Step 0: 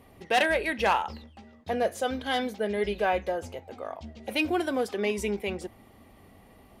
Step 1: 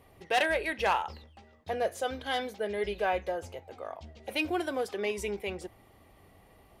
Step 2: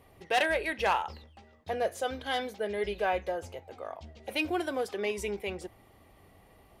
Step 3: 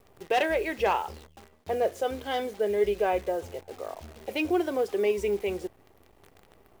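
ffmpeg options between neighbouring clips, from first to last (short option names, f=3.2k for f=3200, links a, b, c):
-af "equalizer=f=230:t=o:w=0.42:g=-9.5,volume=-3dB"
-af anull
-af "equalizer=f=400:t=o:w=0.67:g=7,equalizer=f=1.6k:t=o:w=0.67:g=-4,equalizer=f=4k:t=o:w=0.67:g=-5,equalizer=f=10k:t=o:w=0.67:g=-9,acrusher=bits=9:dc=4:mix=0:aa=0.000001,volume=1.5dB"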